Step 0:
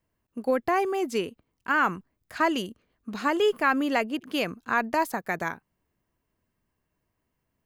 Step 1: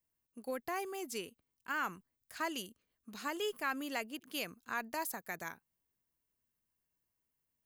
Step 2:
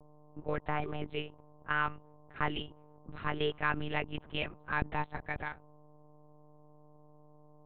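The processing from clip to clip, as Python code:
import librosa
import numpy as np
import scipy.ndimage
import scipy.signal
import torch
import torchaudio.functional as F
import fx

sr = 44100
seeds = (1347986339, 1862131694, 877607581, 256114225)

y1 = librosa.effects.preemphasis(x, coef=0.8, zi=[0.0])
y1 = y1 * 10.0 ** (-1.5 / 20.0)
y2 = fx.dmg_buzz(y1, sr, base_hz=120.0, harmonics=9, level_db=-62.0, tilt_db=-3, odd_only=False)
y2 = fx.env_lowpass(y2, sr, base_hz=870.0, full_db=-34.5)
y2 = fx.lpc_monotone(y2, sr, seeds[0], pitch_hz=150.0, order=8)
y2 = y2 * 10.0 ** (5.0 / 20.0)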